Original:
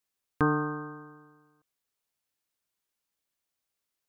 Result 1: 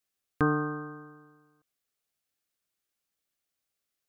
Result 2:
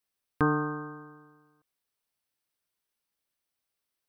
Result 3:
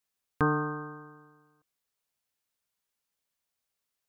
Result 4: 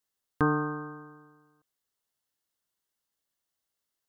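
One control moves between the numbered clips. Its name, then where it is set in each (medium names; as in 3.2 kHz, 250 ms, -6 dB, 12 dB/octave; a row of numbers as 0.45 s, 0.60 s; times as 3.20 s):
band-stop, frequency: 950 Hz, 6.9 kHz, 330 Hz, 2.4 kHz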